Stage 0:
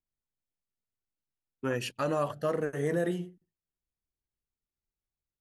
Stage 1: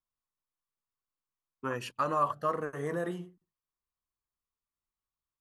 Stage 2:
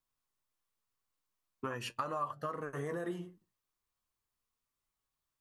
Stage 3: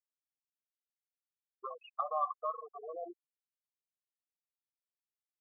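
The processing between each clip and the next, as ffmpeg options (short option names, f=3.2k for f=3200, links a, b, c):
-af "equalizer=f=1.1k:w=2.4:g=15,volume=-5.5dB"
-af "acompressor=threshold=-40dB:ratio=5,flanger=delay=7:depth=3.4:regen=60:speed=0.4:shape=triangular,volume=9dB"
-filter_complex "[0:a]asplit=3[a][b][c];[a]bandpass=f=730:t=q:w=8,volume=0dB[d];[b]bandpass=f=1.09k:t=q:w=8,volume=-6dB[e];[c]bandpass=f=2.44k:t=q:w=8,volume=-9dB[f];[d][e][f]amix=inputs=3:normalize=0,afftfilt=real='re*gte(hypot(re,im),0.0126)':imag='im*gte(hypot(re,im),0.0126)':win_size=1024:overlap=0.75,adynamicsmooth=sensitivity=4:basefreq=4.9k,volume=11dB"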